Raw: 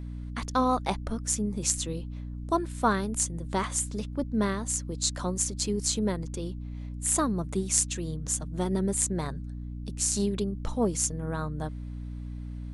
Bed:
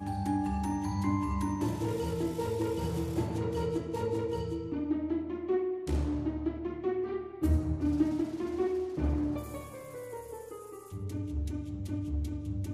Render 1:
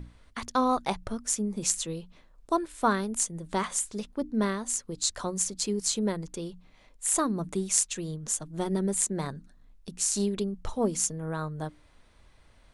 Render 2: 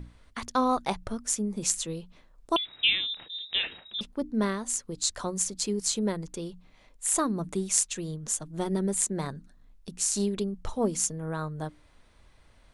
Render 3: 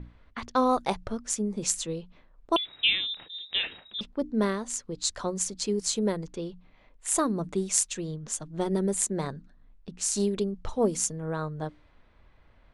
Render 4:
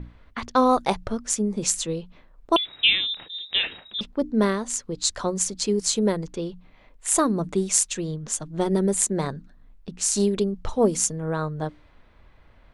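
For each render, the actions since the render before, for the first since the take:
notches 60/120/180/240/300 Hz
2.56–4.01 inverted band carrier 3800 Hz
low-pass opened by the level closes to 2500 Hz, open at -22.5 dBFS; dynamic EQ 480 Hz, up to +4 dB, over -40 dBFS, Q 1.5
gain +5 dB; limiter -3 dBFS, peak gain reduction 2.5 dB

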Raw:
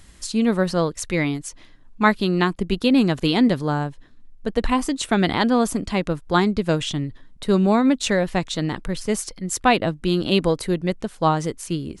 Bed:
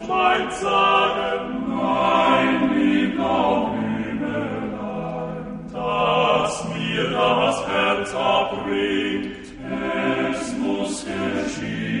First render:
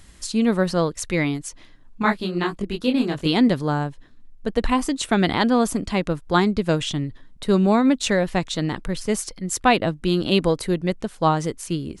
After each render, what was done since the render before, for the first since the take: 2.02–3.27 detuned doubles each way 56 cents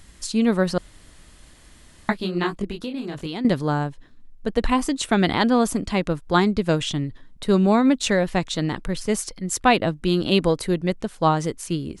0.78–2.09 room tone; 2.71–3.45 compressor, threshold -26 dBFS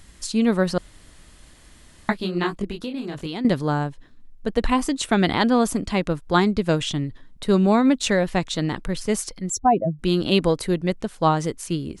9.5–9.99 spectral contrast raised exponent 2.8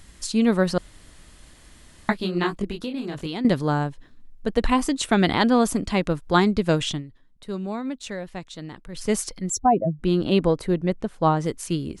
6.91–9.04 dip -12.5 dB, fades 0.12 s; 9.66–11.46 high shelf 2400 Hz -10 dB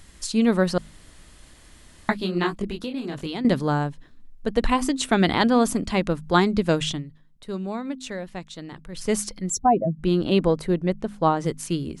de-hum 51.56 Hz, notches 5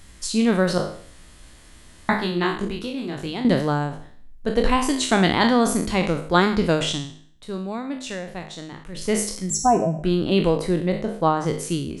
spectral trails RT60 0.54 s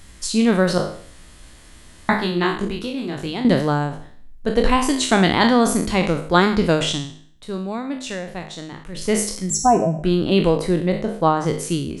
gain +2.5 dB; limiter -3 dBFS, peak gain reduction 1 dB

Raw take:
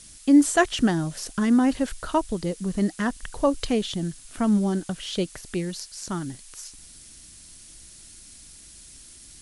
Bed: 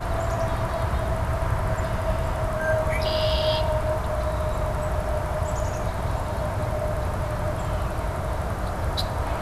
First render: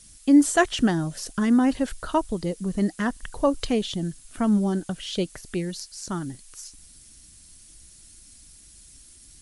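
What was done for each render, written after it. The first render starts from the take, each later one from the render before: denoiser 6 dB, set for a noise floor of -48 dBFS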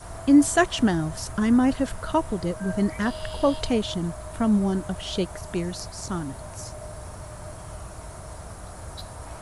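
add bed -12.5 dB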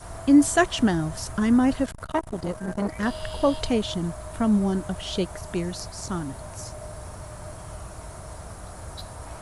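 1.85–3.03 core saturation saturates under 600 Hz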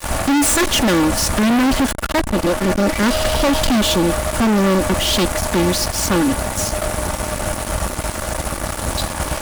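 minimum comb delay 3.5 ms; fuzz box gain 38 dB, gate -42 dBFS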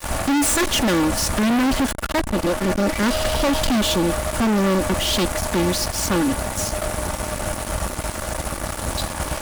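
gain -3.5 dB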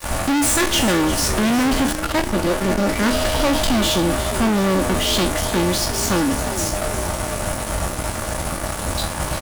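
spectral trails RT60 0.33 s; frequency-shifting echo 0.353 s, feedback 52%, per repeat +52 Hz, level -12 dB

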